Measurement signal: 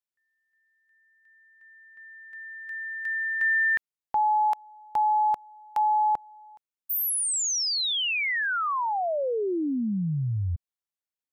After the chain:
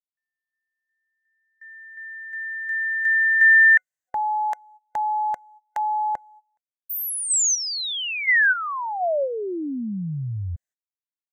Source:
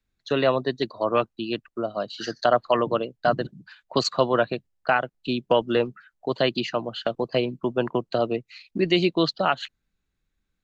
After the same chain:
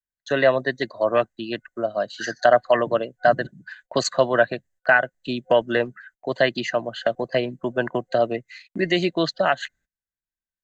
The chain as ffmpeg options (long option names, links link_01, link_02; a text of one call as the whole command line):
ffmpeg -i in.wav -af "superequalizer=8b=2:11b=3.55:15b=2.51,agate=range=-23dB:threshold=-45dB:ratio=16:release=164:detection=rms,volume=-1dB" out.wav